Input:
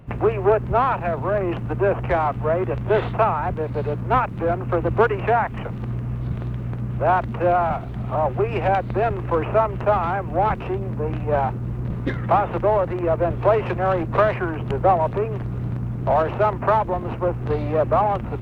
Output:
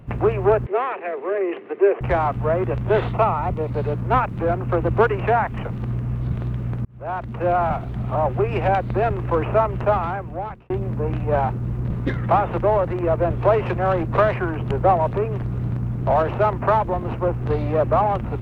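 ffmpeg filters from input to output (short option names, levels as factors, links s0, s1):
-filter_complex "[0:a]asettb=1/sr,asplit=3[s0][s1][s2];[s0]atrim=end=0.664[s3];[s1]atrim=start=0.66:end=2.01,asetpts=PTS-STARTPTS,afade=t=in:d=0.004:c=qsin,afade=t=out:st=1.346:d=0.004:c=qsin,highpass=f=370:w=0.5412,highpass=f=370:w=1.3066,equalizer=f=400:t=q:w=4:g=9,equalizer=f=620:t=q:w=4:g=-5,equalizer=f=910:t=q:w=4:g=-9,equalizer=f=1400:t=q:w=4:g=-7,equalizer=f=2000:t=q:w=4:g=5,lowpass=f=3000:w=0.5412,lowpass=f=3000:w=1.3066[s4];[s2]atrim=start=2.006[s5];[s3][s4]acrossfade=d=0.004:c1=hsin:c2=qsin[s6];[s6][s5]acrossfade=d=0.004:c1=qsin:c2=hsin,asettb=1/sr,asplit=3[s7][s8][s9];[s7]atrim=end=3.124[s10];[s8]atrim=start=3.12:end=3.71,asetpts=PTS-STARTPTS,afade=t=in:d=0.004:c=qsin,afade=t=out:st=0.586:d=0.004:c=qsin,asuperstop=centerf=1600:order=4:qfactor=5.7[s11];[s9]atrim=start=3.706[s12];[s10][s11]acrossfade=d=0.004:c1=hsin:c2=qsin[s13];[s13][s12]acrossfade=d=0.004:c1=qsin:c2=hsin,asplit=3[s14][s15][s16];[s14]atrim=end=6.85,asetpts=PTS-STARTPTS,afade=t=out:st=6.846:d=0.004:c=hsin[s17];[s15]atrim=start=6.85:end=10.7,asetpts=PTS-STARTPTS,afade=t=in:d=0.79,afade=t=out:st=3.02:d=0.83[s18];[s16]atrim=start=10.7,asetpts=PTS-STARTPTS,afade=t=in:d=0.004:c=hsin[s19];[s17][s18][s19]concat=n=3:v=0:a=1,lowshelf=f=160:g=3"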